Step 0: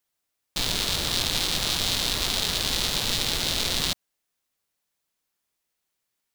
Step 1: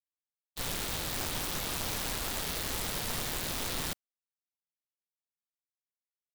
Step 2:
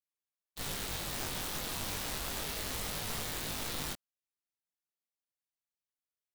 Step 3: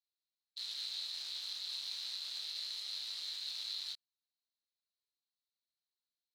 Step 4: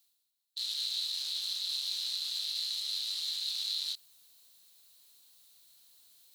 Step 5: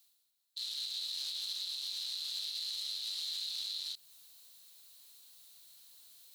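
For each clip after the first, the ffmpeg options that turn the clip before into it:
ffmpeg -i in.wav -af "agate=range=-33dB:threshold=-23dB:ratio=3:detection=peak,aeval=exprs='(mod(10*val(0)+1,2)-1)/10':channel_layout=same,volume=-4.5dB" out.wav
ffmpeg -i in.wav -af "flanger=delay=19:depth=2.6:speed=0.32" out.wav
ffmpeg -i in.wav -af "alimiter=level_in=6dB:limit=-24dB:level=0:latency=1,volume=-6dB,bandpass=frequency=4100:width_type=q:width=9:csg=0,volume=11.5dB" out.wav
ffmpeg -i in.wav -af "areverse,acompressor=mode=upward:threshold=-53dB:ratio=2.5,areverse,aexciter=amount=2.2:drive=6.1:freq=2900" out.wav
ffmpeg -i in.wav -filter_complex "[0:a]lowshelf=frequency=490:gain=-2.5,acrossover=split=550[link_01][link_02];[link_02]alimiter=level_in=8dB:limit=-24dB:level=0:latency=1:release=210,volume=-8dB[link_03];[link_01][link_03]amix=inputs=2:normalize=0,volume=3dB" out.wav

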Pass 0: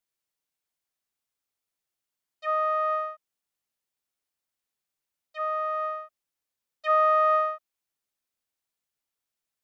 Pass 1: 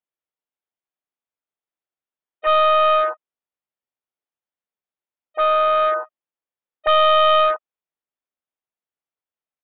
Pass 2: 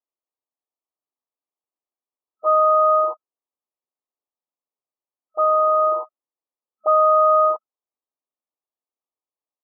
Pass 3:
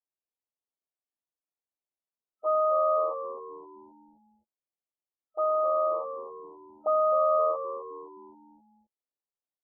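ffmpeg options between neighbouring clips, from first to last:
ffmpeg -i in.wav -af "afwtdn=0.0251,equalizer=frequency=600:width=0.33:gain=9.5,aresample=8000,volume=18dB,asoftclip=hard,volume=-18dB,aresample=44100,volume=5.5dB" out.wav
ffmpeg -i in.wav -af "afftfilt=real='re*between(b*sr/4096,220,1300)':imag='im*between(b*sr/4096,220,1300)':win_size=4096:overlap=0.75" out.wav
ffmpeg -i in.wav -filter_complex "[0:a]lowpass=1000,asplit=2[link_01][link_02];[link_02]asplit=5[link_03][link_04][link_05][link_06][link_07];[link_03]adelay=261,afreqshift=-81,volume=-11dB[link_08];[link_04]adelay=522,afreqshift=-162,volume=-18.1dB[link_09];[link_05]adelay=783,afreqshift=-243,volume=-25.3dB[link_10];[link_06]adelay=1044,afreqshift=-324,volume=-32.4dB[link_11];[link_07]adelay=1305,afreqshift=-405,volume=-39.5dB[link_12];[link_08][link_09][link_10][link_11][link_12]amix=inputs=5:normalize=0[link_13];[link_01][link_13]amix=inputs=2:normalize=0,volume=-6dB" out.wav

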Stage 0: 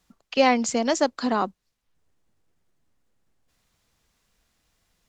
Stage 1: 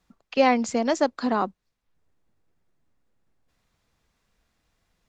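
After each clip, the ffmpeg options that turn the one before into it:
ffmpeg -i in.wav -af "highshelf=frequency=4400:gain=-9,bandreject=frequency=3000:width=25" out.wav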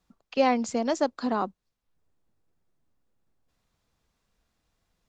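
ffmpeg -i in.wav -af "equalizer=frequency=2000:width=1.7:gain=-3.5,volume=-3dB" out.wav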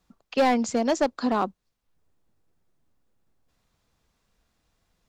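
ffmpeg -i in.wav -af "asoftclip=type=hard:threshold=-19dB,volume=3.5dB" out.wav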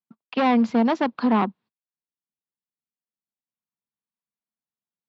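ffmpeg -i in.wav -af "agate=range=-32dB:threshold=-52dB:ratio=16:detection=peak,aeval=exprs='clip(val(0),-1,0.0376)':channel_layout=same,highpass=frequency=120:width=0.5412,highpass=frequency=120:width=1.3066,equalizer=frequency=220:width_type=q:width=4:gain=7,equalizer=frequency=560:width_type=q:width=4:gain=-4,equalizer=frequency=960:width_type=q:width=4:gain=5,lowpass=frequency=3800:width=0.5412,lowpass=frequency=3800:width=1.3066,volume=3dB" out.wav

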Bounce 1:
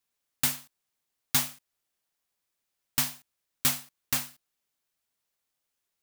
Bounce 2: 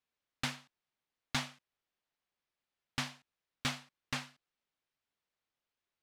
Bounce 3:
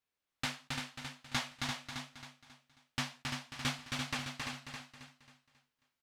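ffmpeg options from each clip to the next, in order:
ffmpeg -i in.wav -af "lowpass=3800,volume=-3dB" out.wav
ffmpeg -i in.wav -filter_complex "[0:a]asplit=2[link_01][link_02];[link_02]aecho=0:1:270|540|810|1080|1350:0.631|0.252|0.101|0.0404|0.0162[link_03];[link_01][link_03]amix=inputs=2:normalize=0,flanger=delay=8.9:depth=9.7:regen=-30:speed=1:shape=sinusoidal,asplit=2[link_04][link_05];[link_05]aecho=0:1:311|342:0.15|0.531[link_06];[link_04][link_06]amix=inputs=2:normalize=0,volume=3.5dB" out.wav

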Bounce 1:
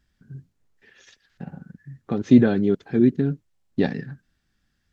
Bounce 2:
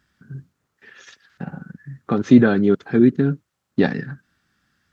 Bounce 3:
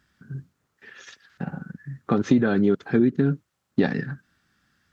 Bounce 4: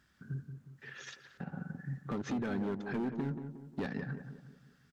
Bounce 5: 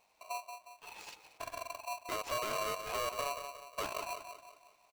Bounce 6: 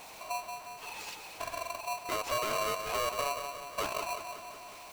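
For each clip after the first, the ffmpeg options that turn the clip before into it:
ffmpeg -i in.wav -filter_complex "[0:a]highpass=94,equalizer=frequency=1300:width_type=o:width=0.74:gain=8,asplit=2[link_01][link_02];[link_02]alimiter=limit=-13dB:level=0:latency=1:release=476,volume=-1.5dB[link_03];[link_01][link_03]amix=inputs=2:normalize=0" out.wav
ffmpeg -i in.wav -af "acompressor=threshold=-15dB:ratio=6" out.wav
ffmpeg -i in.wav -filter_complex "[0:a]asoftclip=type=hard:threshold=-18dB,alimiter=level_in=4dB:limit=-24dB:level=0:latency=1:release=243,volume=-4dB,asplit=2[link_01][link_02];[link_02]adelay=180,lowpass=frequency=1200:poles=1,volume=-7.5dB,asplit=2[link_03][link_04];[link_04]adelay=180,lowpass=frequency=1200:poles=1,volume=0.46,asplit=2[link_05][link_06];[link_06]adelay=180,lowpass=frequency=1200:poles=1,volume=0.46,asplit=2[link_07][link_08];[link_08]adelay=180,lowpass=frequency=1200:poles=1,volume=0.46,asplit=2[link_09][link_10];[link_10]adelay=180,lowpass=frequency=1200:poles=1,volume=0.46[link_11];[link_03][link_05][link_07][link_09][link_11]amix=inputs=5:normalize=0[link_12];[link_01][link_12]amix=inputs=2:normalize=0,volume=-3dB" out.wav
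ffmpeg -i in.wav -af "aeval=exprs='val(0)*sgn(sin(2*PI*850*n/s))':channel_layout=same,volume=-1.5dB" out.wav
ffmpeg -i in.wav -af "aeval=exprs='val(0)+0.5*0.00473*sgn(val(0))':channel_layout=same,volume=3dB" out.wav

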